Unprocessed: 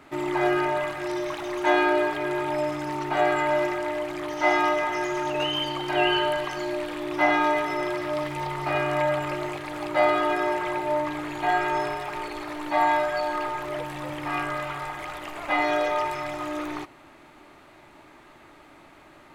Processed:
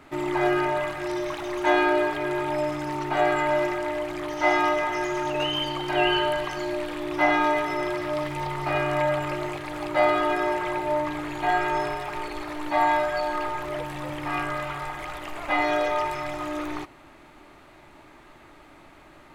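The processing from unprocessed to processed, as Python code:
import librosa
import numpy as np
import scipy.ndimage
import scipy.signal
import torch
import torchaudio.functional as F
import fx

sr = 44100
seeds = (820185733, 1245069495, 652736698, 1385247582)

y = fx.low_shelf(x, sr, hz=68.0, db=9.0)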